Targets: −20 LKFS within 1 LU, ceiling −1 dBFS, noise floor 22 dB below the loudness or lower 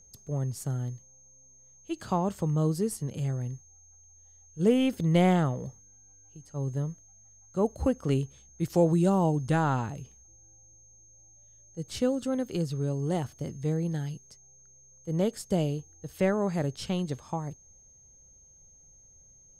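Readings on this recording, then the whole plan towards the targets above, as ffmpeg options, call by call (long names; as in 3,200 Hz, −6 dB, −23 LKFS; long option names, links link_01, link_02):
interfering tone 6,400 Hz; level of the tone −55 dBFS; integrated loudness −29.0 LKFS; sample peak −12.0 dBFS; target loudness −20.0 LKFS
→ -af "bandreject=frequency=6400:width=30"
-af "volume=9dB"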